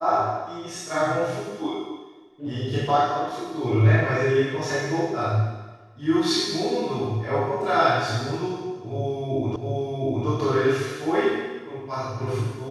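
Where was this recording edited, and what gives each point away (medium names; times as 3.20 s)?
9.56 s: repeat of the last 0.71 s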